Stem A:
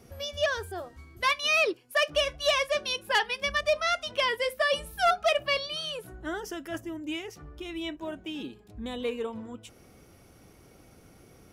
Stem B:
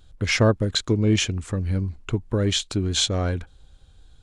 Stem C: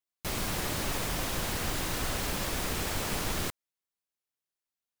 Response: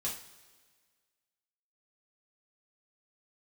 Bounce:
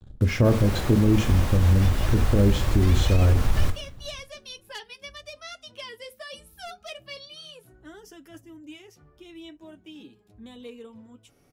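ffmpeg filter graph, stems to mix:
-filter_complex "[0:a]acrossover=split=380|3000[a][b][c];[b]acompressor=threshold=-53dB:ratio=1.5[d];[a][d][c]amix=inputs=3:normalize=0,flanger=delay=6.9:depth=3:regen=-36:speed=0.3:shape=sinusoidal,adelay=1600,volume=-3.5dB[e];[1:a]tiltshelf=f=1.4k:g=9.5,acrusher=bits=5:mix=0:aa=0.5,volume=-7.5dB,asplit=2[f][g];[g]volume=-5.5dB[h];[2:a]highshelf=f=2.8k:g=-10.5,asubboost=boost=7.5:cutoff=110,adelay=200,volume=1dB,asplit=2[i][j];[j]volume=-5.5dB[k];[3:a]atrim=start_sample=2205[l];[h][k]amix=inputs=2:normalize=0[m];[m][l]afir=irnorm=-1:irlink=0[n];[e][f][i][n]amix=inputs=4:normalize=0,alimiter=limit=-10.5dB:level=0:latency=1:release=43"

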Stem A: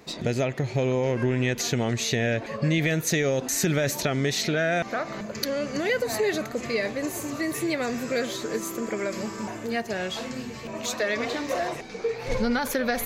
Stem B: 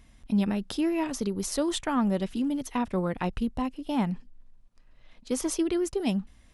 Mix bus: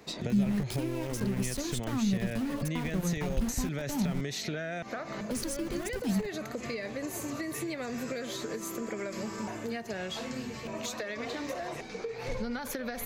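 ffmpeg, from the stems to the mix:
-filter_complex "[0:a]acompressor=threshold=-27dB:ratio=6,volume=-2.5dB[a];[1:a]bass=f=250:g=13,treble=f=4k:g=10,bandreject=f=60:t=h:w=6,bandreject=f=120:t=h:w=6,bandreject=f=180:t=h:w=6,bandreject=f=240:t=h:w=6,bandreject=f=300:t=h:w=6,bandreject=f=360:t=h:w=6,aeval=exprs='val(0)*gte(abs(val(0)),0.0473)':c=same,volume=-7dB[b];[a][b]amix=inputs=2:normalize=0,acrossover=split=200[c][d];[d]acompressor=threshold=-33dB:ratio=6[e];[c][e]amix=inputs=2:normalize=0"

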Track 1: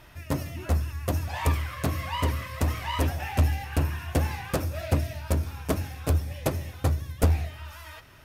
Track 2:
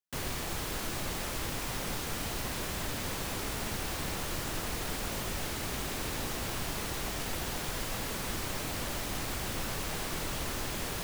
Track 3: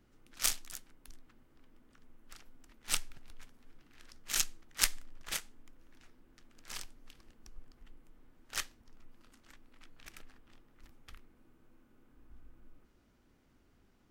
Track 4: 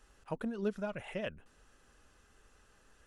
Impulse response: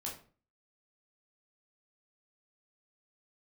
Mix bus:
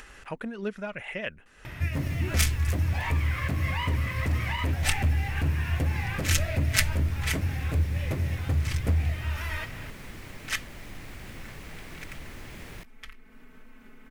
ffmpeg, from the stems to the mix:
-filter_complex "[0:a]alimiter=level_in=6dB:limit=-24dB:level=0:latency=1:release=439,volume=-6dB,equalizer=f=120:w=0.35:g=12.5,adelay=1650,volume=2dB[a];[1:a]lowshelf=f=460:g=11.5,adelay=1800,volume=-16dB[b];[2:a]aecho=1:1:4.6:0.89,adelay=1950,volume=-1dB[c];[3:a]volume=1.5dB[d];[a][b][c][d]amix=inputs=4:normalize=0,equalizer=f=2.1k:w=1.4:g=11,acompressor=mode=upward:threshold=-37dB:ratio=2.5"

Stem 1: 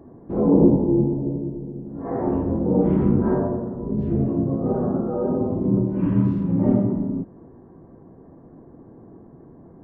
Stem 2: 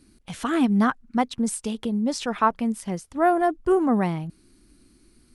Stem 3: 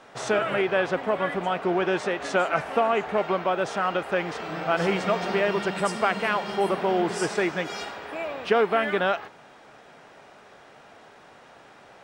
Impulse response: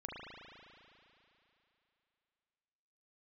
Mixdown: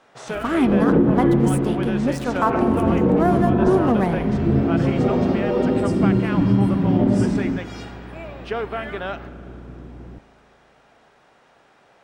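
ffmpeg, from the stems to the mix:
-filter_complex "[0:a]aeval=exprs='val(0)+0.00891*(sin(2*PI*60*n/s)+sin(2*PI*2*60*n/s)/2+sin(2*PI*3*60*n/s)/3+sin(2*PI*4*60*n/s)/4+sin(2*PI*5*60*n/s)/5)':c=same,adelay=350,volume=1.5dB,asplit=2[a][b];[b]volume=-9dB[c];[1:a]equalizer=f=5.4k:w=0.68:g=-6,aeval=exprs='sgn(val(0))*max(abs(val(0))-0.01,0)':c=same,volume=1dB,asplit=2[d][e];[e]volume=-5.5dB[f];[2:a]volume=-6.5dB,asplit=2[g][h];[h]volume=-12dB[i];[3:a]atrim=start_sample=2205[j];[c][f][i]amix=inputs=3:normalize=0[k];[k][j]afir=irnorm=-1:irlink=0[l];[a][d][g][l]amix=inputs=4:normalize=0,alimiter=limit=-7.5dB:level=0:latency=1:release=104"

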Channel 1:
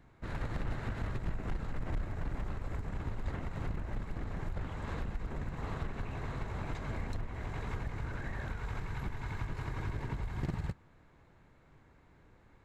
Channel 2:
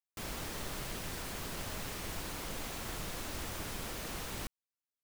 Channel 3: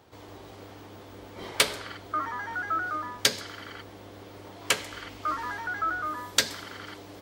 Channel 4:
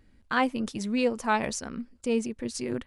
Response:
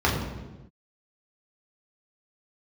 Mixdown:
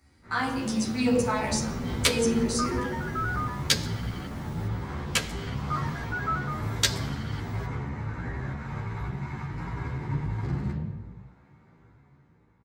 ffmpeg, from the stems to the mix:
-filter_complex "[0:a]equalizer=f=66:t=o:w=0.97:g=-14,dynaudnorm=f=490:g=5:m=10dB,volume=-14.5dB,asplit=2[a][b];[b]volume=-7dB[c];[1:a]adelay=200,volume=-12.5dB[d];[2:a]adelay=450,volume=-1dB[e];[3:a]bass=f=250:g=-9,treble=f=4k:g=12,alimiter=limit=-18.5dB:level=0:latency=1:release=207,volume=-6dB,asplit=2[f][g];[g]volume=-6dB[h];[4:a]atrim=start_sample=2205[i];[c][h]amix=inputs=2:normalize=0[j];[j][i]afir=irnorm=-1:irlink=0[k];[a][d][e][f][k]amix=inputs=5:normalize=0,equalizer=f=4.9k:t=o:w=2.6:g=4,asplit=2[l][m];[m]adelay=11.6,afreqshift=1.4[n];[l][n]amix=inputs=2:normalize=1"

